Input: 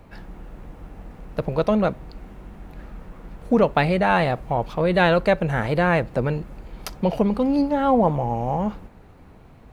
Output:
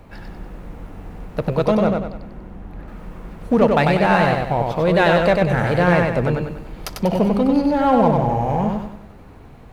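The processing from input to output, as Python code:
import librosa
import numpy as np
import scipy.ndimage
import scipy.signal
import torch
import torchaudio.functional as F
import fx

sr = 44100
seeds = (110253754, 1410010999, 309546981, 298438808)

p1 = fx.high_shelf(x, sr, hz=2300.0, db=-10.0, at=(1.79, 2.88))
p2 = np.clip(p1, -10.0 ** (-22.0 / 20.0), 10.0 ** (-22.0 / 20.0))
p3 = p1 + (p2 * librosa.db_to_amplitude(-6.5))
y = fx.echo_feedback(p3, sr, ms=96, feedback_pct=42, wet_db=-3.5)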